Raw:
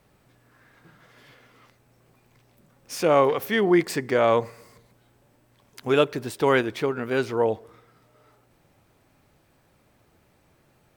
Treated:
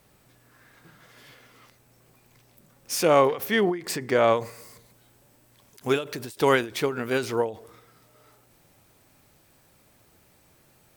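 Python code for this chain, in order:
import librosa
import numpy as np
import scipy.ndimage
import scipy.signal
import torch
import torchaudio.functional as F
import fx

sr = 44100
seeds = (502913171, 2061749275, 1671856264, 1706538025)

y = fx.high_shelf(x, sr, hz=4300.0, db=fx.steps((0.0, 9.0), (3.21, 3.5), (4.35, 11.5)))
y = fx.end_taper(y, sr, db_per_s=150.0)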